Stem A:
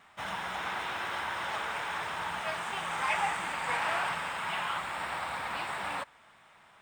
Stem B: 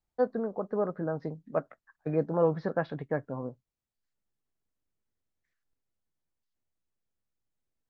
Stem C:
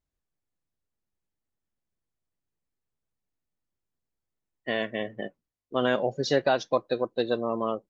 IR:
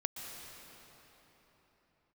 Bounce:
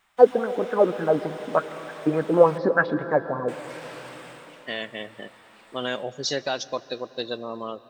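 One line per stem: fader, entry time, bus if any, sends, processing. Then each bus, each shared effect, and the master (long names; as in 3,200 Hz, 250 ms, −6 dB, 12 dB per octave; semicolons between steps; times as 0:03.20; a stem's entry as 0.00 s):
−13.5 dB, 0.00 s, muted 0:02.58–0:03.48, send −11 dB, soft clipping −30.5 dBFS, distortion −13 dB; automatic ducking −14 dB, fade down 0.35 s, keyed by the third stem
−2.0 dB, 0.00 s, send −7 dB, auto-filter bell 3.4 Hz 280–1,500 Hz +17 dB
−7.0 dB, 0.00 s, send −15 dB, high-shelf EQ 5,700 Hz +9 dB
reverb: on, pre-delay 113 ms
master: high-shelf EQ 2,300 Hz +9.5 dB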